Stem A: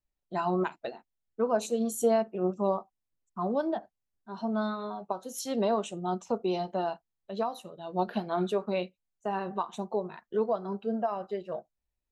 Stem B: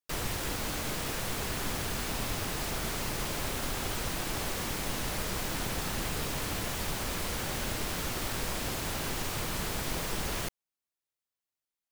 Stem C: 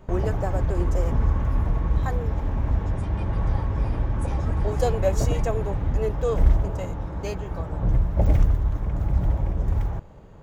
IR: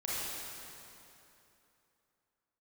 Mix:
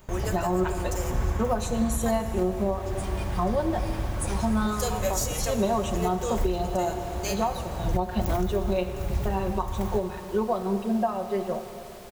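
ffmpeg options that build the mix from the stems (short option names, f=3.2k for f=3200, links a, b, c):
-filter_complex "[0:a]aecho=1:1:5.5:0.78,volume=2.5dB,asplit=2[a][b];[b]volume=-12.5dB[c];[1:a]adelay=2300,volume=-14dB[d];[2:a]crystalizer=i=8.5:c=0,volume=-7.5dB,asplit=2[e][f];[f]volume=-12.5dB[g];[3:a]atrim=start_sample=2205[h];[c][g]amix=inputs=2:normalize=0[i];[i][h]afir=irnorm=-1:irlink=0[j];[a][d][e][j]amix=inputs=4:normalize=0,alimiter=limit=-15.5dB:level=0:latency=1:release=340"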